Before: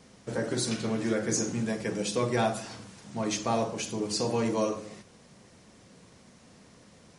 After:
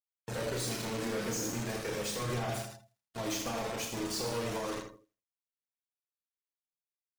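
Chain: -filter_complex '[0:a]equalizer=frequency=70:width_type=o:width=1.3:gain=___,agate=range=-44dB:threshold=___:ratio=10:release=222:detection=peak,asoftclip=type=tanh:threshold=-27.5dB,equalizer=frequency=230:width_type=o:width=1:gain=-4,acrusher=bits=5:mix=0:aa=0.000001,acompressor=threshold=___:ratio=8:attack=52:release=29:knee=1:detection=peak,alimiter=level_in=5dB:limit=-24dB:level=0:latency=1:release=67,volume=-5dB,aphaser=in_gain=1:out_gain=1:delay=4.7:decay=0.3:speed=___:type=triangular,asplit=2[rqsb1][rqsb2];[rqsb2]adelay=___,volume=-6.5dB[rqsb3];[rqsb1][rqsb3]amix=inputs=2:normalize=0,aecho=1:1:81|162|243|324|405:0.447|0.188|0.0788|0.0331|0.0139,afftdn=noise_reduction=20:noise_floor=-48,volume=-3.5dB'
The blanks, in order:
2.5, -46dB, -37dB, 0.41, 34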